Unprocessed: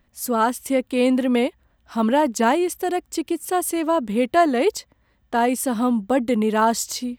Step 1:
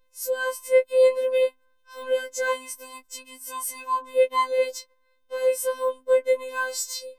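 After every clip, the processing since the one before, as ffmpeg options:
-af "bandreject=f=326.4:t=h:w=4,bandreject=f=652.8:t=h:w=4,bandreject=f=979.2:t=h:w=4,bandreject=f=1.3056k:t=h:w=4,bandreject=f=1.632k:t=h:w=4,afftfilt=real='hypot(re,im)*cos(PI*b)':imag='0':win_size=1024:overlap=0.75,afftfilt=real='re*3.46*eq(mod(b,12),0)':imag='im*3.46*eq(mod(b,12),0)':win_size=2048:overlap=0.75,volume=-3dB"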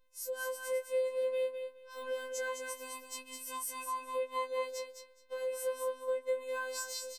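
-filter_complex "[0:a]acompressor=threshold=-33dB:ratio=2.5,asplit=2[a][b];[b]aecho=0:1:209|418|627:0.501|0.0902|0.0162[c];[a][c]amix=inputs=2:normalize=0,volume=-5.5dB"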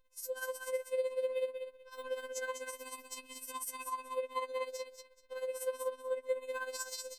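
-af "tremolo=f=16:d=0.66,volume=1dB"

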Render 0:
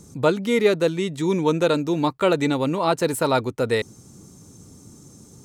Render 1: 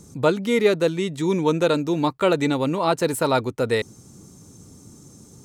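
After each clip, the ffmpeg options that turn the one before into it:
-af anull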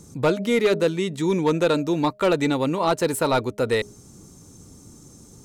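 -af "bandreject=f=205.7:t=h:w=4,bandreject=f=411.4:t=h:w=4,bandreject=f=617.1:t=h:w=4,aeval=exprs='0.473*(cos(1*acos(clip(val(0)/0.473,-1,1)))-cos(1*PI/2))+0.0841*(cos(5*acos(clip(val(0)/0.473,-1,1)))-cos(5*PI/2))+0.0335*(cos(7*acos(clip(val(0)/0.473,-1,1)))-cos(7*PI/2))':c=same,asubboost=boost=3:cutoff=58,volume=-2.5dB"

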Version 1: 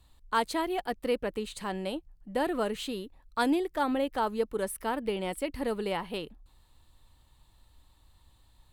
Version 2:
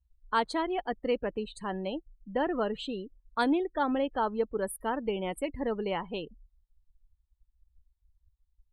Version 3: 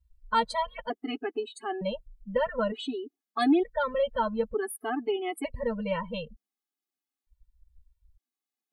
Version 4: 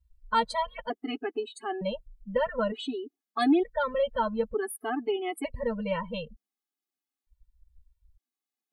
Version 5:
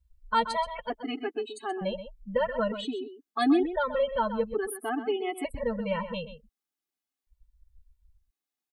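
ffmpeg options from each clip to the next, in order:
-af "afftdn=nr=35:nf=-41"
-af "afftfilt=real='re*gt(sin(2*PI*0.55*pts/sr)*(1-2*mod(floor(b*sr/1024/220),2)),0)':imag='im*gt(sin(2*PI*0.55*pts/sr)*(1-2*mod(floor(b*sr/1024/220),2)),0)':win_size=1024:overlap=0.75,volume=5dB"
-af anull
-filter_complex "[0:a]asplit=2[a][b];[b]adelay=128.3,volume=-11dB,highshelf=f=4k:g=-2.89[c];[a][c]amix=inputs=2:normalize=0"

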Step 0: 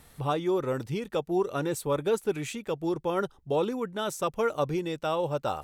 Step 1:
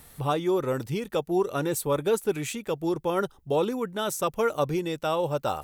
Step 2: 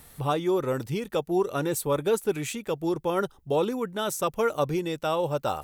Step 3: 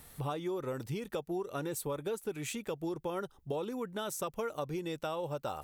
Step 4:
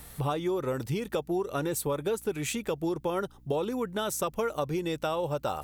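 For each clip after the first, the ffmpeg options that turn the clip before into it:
-af "highshelf=f=11k:g=11.5,volume=2dB"
-af anull
-af "acompressor=threshold=-30dB:ratio=5,volume=-3.5dB"
-af "aeval=exprs='val(0)+0.000794*(sin(2*PI*60*n/s)+sin(2*PI*2*60*n/s)/2+sin(2*PI*3*60*n/s)/3+sin(2*PI*4*60*n/s)/4+sin(2*PI*5*60*n/s)/5)':c=same,volume=6.5dB"

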